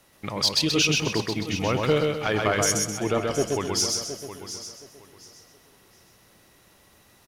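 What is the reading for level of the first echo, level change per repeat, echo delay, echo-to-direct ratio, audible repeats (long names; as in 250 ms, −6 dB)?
−3.0 dB, repeats not evenly spaced, 129 ms, −1.5 dB, 10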